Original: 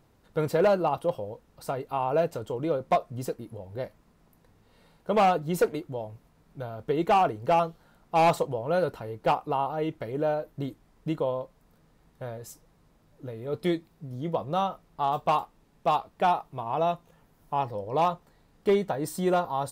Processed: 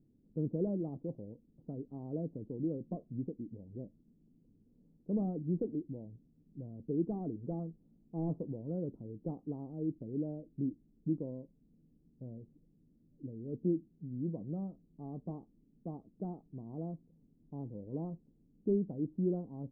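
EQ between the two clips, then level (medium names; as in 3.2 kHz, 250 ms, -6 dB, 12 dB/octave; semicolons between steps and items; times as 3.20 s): four-pole ladder low-pass 320 Hz, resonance 45%; peaking EQ 62 Hz -9.5 dB 1.4 oct; +4.0 dB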